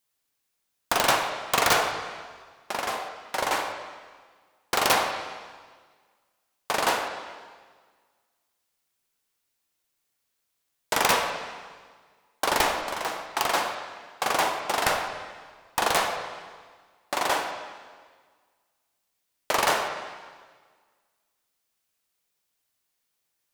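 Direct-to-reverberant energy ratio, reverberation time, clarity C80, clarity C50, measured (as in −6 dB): 3.5 dB, 1.6 s, 7.0 dB, 5.5 dB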